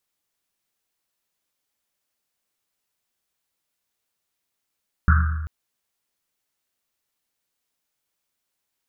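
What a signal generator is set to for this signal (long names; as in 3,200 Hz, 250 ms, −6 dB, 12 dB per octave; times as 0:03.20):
drum after Risset length 0.39 s, pitch 78 Hz, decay 1.51 s, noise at 1,400 Hz, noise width 430 Hz, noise 25%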